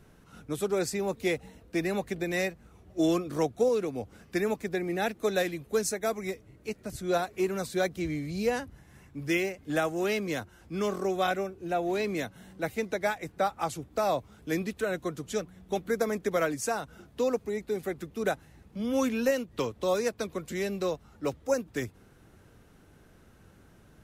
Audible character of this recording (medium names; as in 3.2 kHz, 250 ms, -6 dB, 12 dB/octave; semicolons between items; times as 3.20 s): noise floor -58 dBFS; spectral tilt -5.0 dB/octave